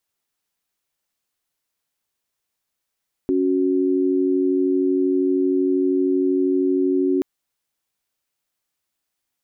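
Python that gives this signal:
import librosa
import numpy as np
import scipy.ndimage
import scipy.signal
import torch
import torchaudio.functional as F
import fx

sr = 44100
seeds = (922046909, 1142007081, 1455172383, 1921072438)

y = fx.chord(sr, length_s=3.93, notes=(61, 66), wave='sine', level_db=-19.0)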